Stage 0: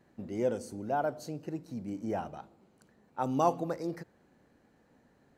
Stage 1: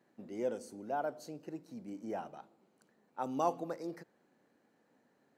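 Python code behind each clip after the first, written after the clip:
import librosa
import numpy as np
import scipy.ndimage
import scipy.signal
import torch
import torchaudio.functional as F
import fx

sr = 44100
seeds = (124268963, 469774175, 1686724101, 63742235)

y = scipy.signal.sosfilt(scipy.signal.butter(2, 210.0, 'highpass', fs=sr, output='sos'), x)
y = y * 10.0 ** (-5.0 / 20.0)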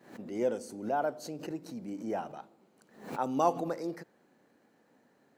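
y = fx.pre_swell(x, sr, db_per_s=110.0)
y = y * 10.0 ** (5.0 / 20.0)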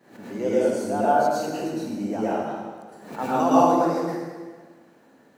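y = fx.rev_plate(x, sr, seeds[0], rt60_s=1.5, hf_ratio=0.8, predelay_ms=95, drr_db=-9.5)
y = y * 10.0 ** (1.0 / 20.0)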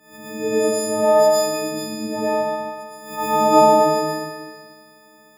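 y = fx.freq_snap(x, sr, grid_st=6)
y = fx.echo_stepped(y, sr, ms=119, hz=750.0, octaves=0.7, feedback_pct=70, wet_db=-7.5)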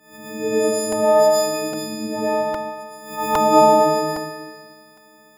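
y = fx.buffer_crackle(x, sr, first_s=0.92, period_s=0.81, block=128, kind='repeat')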